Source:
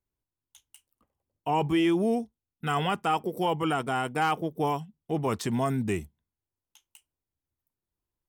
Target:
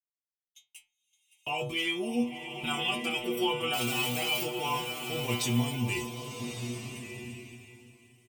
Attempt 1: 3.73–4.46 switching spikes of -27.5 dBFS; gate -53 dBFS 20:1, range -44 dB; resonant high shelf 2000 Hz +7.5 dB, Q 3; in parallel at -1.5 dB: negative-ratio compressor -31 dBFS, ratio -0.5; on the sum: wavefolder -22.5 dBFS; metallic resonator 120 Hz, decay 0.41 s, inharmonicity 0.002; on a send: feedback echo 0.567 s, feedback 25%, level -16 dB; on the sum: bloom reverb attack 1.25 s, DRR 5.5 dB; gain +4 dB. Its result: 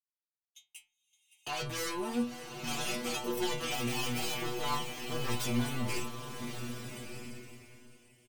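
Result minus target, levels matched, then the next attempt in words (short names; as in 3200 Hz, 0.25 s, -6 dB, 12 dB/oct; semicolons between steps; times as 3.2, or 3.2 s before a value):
wavefolder: distortion +25 dB
3.73–4.46 switching spikes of -27.5 dBFS; gate -53 dBFS 20:1, range -44 dB; resonant high shelf 2000 Hz +7.5 dB, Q 3; in parallel at -1.5 dB: negative-ratio compressor -31 dBFS, ratio -0.5; on the sum: wavefolder -12.5 dBFS; metallic resonator 120 Hz, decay 0.41 s, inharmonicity 0.002; on a send: feedback echo 0.567 s, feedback 25%, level -16 dB; on the sum: bloom reverb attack 1.25 s, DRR 5.5 dB; gain +4 dB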